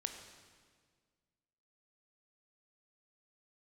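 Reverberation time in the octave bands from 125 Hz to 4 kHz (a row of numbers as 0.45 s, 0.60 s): 2.1 s, 2.1 s, 1.9 s, 1.6 s, 1.6 s, 1.5 s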